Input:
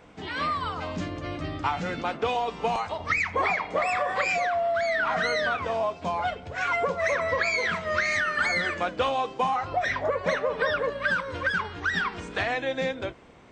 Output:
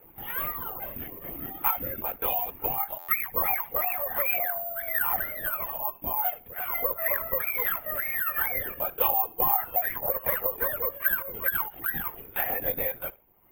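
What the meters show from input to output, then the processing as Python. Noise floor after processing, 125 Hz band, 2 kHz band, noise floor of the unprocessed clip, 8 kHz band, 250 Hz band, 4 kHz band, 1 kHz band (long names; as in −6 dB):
−51 dBFS, −8.5 dB, −7.0 dB, −44 dBFS, can't be measured, −9.5 dB, −13.0 dB, −5.5 dB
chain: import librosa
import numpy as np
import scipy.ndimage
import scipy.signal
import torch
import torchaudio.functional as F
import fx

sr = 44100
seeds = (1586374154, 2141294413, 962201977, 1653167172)

y = scipy.signal.sosfilt(scipy.signal.butter(2, 110.0, 'highpass', fs=sr, output='sos'), x)
y = fx.dereverb_blind(y, sr, rt60_s=1.1)
y = fx.spec_repair(y, sr, seeds[0], start_s=5.18, length_s=0.68, low_hz=380.0, high_hz=770.0, source='after')
y = scipy.signal.sosfilt(scipy.signal.butter(4, 3000.0, 'lowpass', fs=sr, output='sos'), y)
y = fx.peak_eq(y, sr, hz=830.0, db=5.5, octaves=0.27)
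y = y + 0.42 * np.pad(y, (int(3.8 * sr / 1000.0), 0))[:len(y)]
y = fx.harmonic_tremolo(y, sr, hz=1.5, depth_pct=50, crossover_hz=580.0)
y = fx.echo_feedback(y, sr, ms=70, feedback_pct=22, wet_db=-21)
y = fx.lpc_vocoder(y, sr, seeds[1], excitation='whisper', order=16)
y = (np.kron(y[::3], np.eye(3)[0]) * 3)[:len(y)]
y = fx.buffer_glitch(y, sr, at_s=(2.98,), block=512, repeats=8)
y = y * 10.0 ** (-4.5 / 20.0)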